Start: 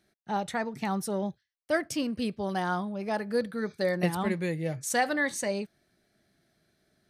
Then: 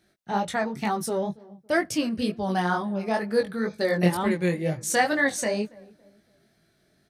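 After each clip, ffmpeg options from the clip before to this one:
-filter_complex "[0:a]asplit=2[a][b];[b]adelay=280,lowpass=f=1k:p=1,volume=-21.5dB,asplit=2[c][d];[d]adelay=280,lowpass=f=1k:p=1,volume=0.39,asplit=2[e][f];[f]adelay=280,lowpass=f=1k:p=1,volume=0.39[g];[a][c][e][g]amix=inputs=4:normalize=0,flanger=delay=18:depth=4.9:speed=2.1,volume=7.5dB"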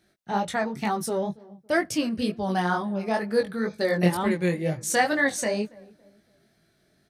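-af anull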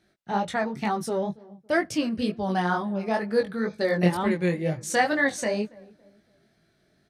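-af "highshelf=f=9.2k:g=-11.5"

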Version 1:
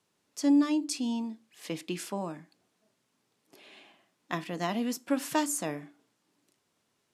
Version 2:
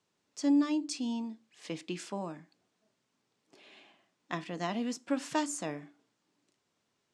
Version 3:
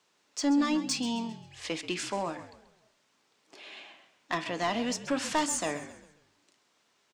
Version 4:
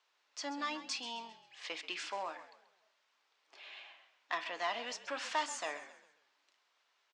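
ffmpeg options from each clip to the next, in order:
-af "lowpass=f=8.2k:w=0.5412,lowpass=f=8.2k:w=1.3066,volume=-3dB"
-filter_complex "[0:a]asplit=2[a][b];[b]highpass=f=720:p=1,volume=16dB,asoftclip=type=tanh:threshold=-17.5dB[c];[a][c]amix=inputs=2:normalize=0,lowpass=f=7.8k:p=1,volume=-6dB,asplit=5[d][e][f][g][h];[e]adelay=133,afreqshift=-47,volume=-14dB[i];[f]adelay=266,afreqshift=-94,volume=-21.7dB[j];[g]adelay=399,afreqshift=-141,volume=-29.5dB[k];[h]adelay=532,afreqshift=-188,volume=-37.2dB[l];[d][i][j][k][l]amix=inputs=5:normalize=0"
-af "highpass=730,lowpass=4.7k,volume=-3.5dB"

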